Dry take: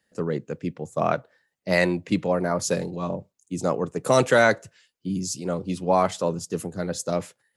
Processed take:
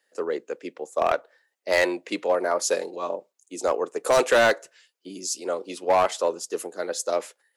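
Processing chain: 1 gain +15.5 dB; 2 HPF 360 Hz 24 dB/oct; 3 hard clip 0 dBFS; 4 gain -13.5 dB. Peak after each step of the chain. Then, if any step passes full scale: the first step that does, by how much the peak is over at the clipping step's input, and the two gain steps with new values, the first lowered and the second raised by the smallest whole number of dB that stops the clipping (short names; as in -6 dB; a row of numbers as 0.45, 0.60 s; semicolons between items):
+9.5, +9.0, 0.0, -13.5 dBFS; step 1, 9.0 dB; step 1 +6.5 dB, step 4 -4.5 dB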